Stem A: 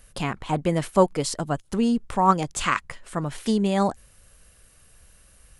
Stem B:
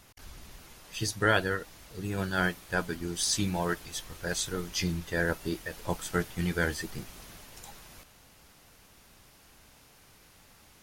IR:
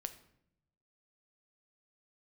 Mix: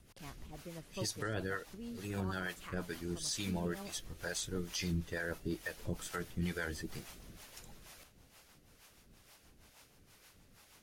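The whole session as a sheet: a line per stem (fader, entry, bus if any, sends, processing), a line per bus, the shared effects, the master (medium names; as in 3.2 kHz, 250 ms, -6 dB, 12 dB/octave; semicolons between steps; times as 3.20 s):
-14.0 dB, 0.00 s, no send, auto duck -9 dB, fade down 0.25 s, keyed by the second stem
+0.5 dB, 0.00 s, no send, harmonic tremolo 2.2 Hz, depth 70%, crossover 470 Hz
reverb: none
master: rotary cabinet horn 6.3 Hz; peak limiter -27.5 dBFS, peak gain reduction 10 dB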